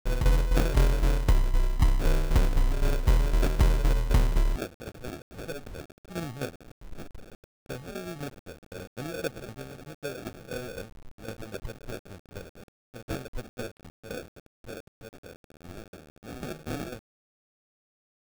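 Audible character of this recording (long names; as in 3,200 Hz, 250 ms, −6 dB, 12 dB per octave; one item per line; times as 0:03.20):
aliases and images of a low sample rate 1,000 Hz, jitter 0%
tremolo saw down 3.9 Hz, depth 70%
a quantiser's noise floor 8 bits, dither none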